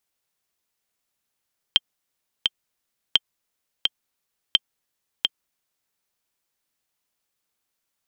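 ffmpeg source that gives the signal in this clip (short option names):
-f lavfi -i "aevalsrc='pow(10,(-2-4*gte(mod(t,2*60/86),60/86))/20)*sin(2*PI*3160*mod(t,60/86))*exp(-6.91*mod(t,60/86)/0.03)':d=4.18:s=44100"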